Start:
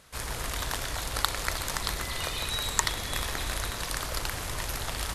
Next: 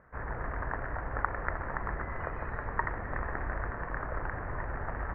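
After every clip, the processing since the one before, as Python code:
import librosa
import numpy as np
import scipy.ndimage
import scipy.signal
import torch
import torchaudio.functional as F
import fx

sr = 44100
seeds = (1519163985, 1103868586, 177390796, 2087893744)

y = scipy.signal.sosfilt(scipy.signal.ellip(4, 1.0, 50, 1800.0, 'lowpass', fs=sr, output='sos'), x)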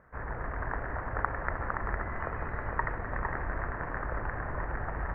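y = x + 10.0 ** (-5.0 / 20.0) * np.pad(x, (int(457 * sr / 1000.0), 0))[:len(x)]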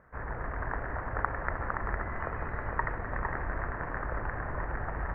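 y = x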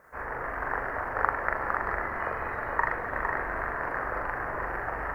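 y = fx.bass_treble(x, sr, bass_db=-13, treble_db=15)
y = fx.doubler(y, sr, ms=42.0, db=-2.0)
y = F.gain(torch.from_numpy(y), 3.5).numpy()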